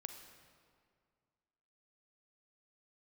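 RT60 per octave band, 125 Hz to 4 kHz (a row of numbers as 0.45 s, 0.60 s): 2.3 s, 2.3 s, 2.1 s, 2.1 s, 1.7 s, 1.4 s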